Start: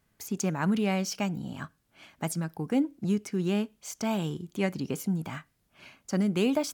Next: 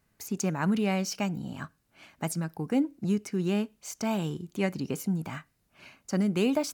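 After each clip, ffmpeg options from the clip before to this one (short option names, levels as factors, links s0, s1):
-af "bandreject=f=3300:w=15"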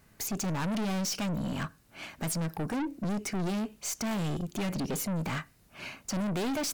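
-filter_complex "[0:a]asplit=2[s0][s1];[s1]alimiter=level_in=1.33:limit=0.0631:level=0:latency=1:release=121,volume=0.75,volume=0.794[s2];[s0][s2]amix=inputs=2:normalize=0,aeval=exprs='(tanh(56.2*val(0)+0.15)-tanh(0.15))/56.2':c=same,volume=1.88"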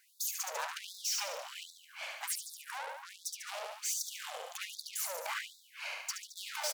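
-af "aecho=1:1:72|144|216|288|360|432|504:0.668|0.348|0.181|0.094|0.0489|0.0254|0.0132,aeval=exprs='(tanh(39.8*val(0)+0.55)-tanh(0.55))/39.8':c=same,afftfilt=real='re*gte(b*sr/1024,430*pow(3500/430,0.5+0.5*sin(2*PI*1.3*pts/sr)))':imag='im*gte(b*sr/1024,430*pow(3500/430,0.5+0.5*sin(2*PI*1.3*pts/sr)))':win_size=1024:overlap=0.75,volume=1.33"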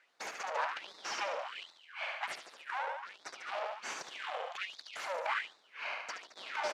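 -filter_complex "[0:a]asplit=2[s0][s1];[s1]acrusher=samples=8:mix=1:aa=0.000001:lfo=1:lforange=8:lforate=0.37,volume=0.376[s2];[s0][s2]amix=inputs=2:normalize=0,highpass=420,lowpass=2700,volume=1.41"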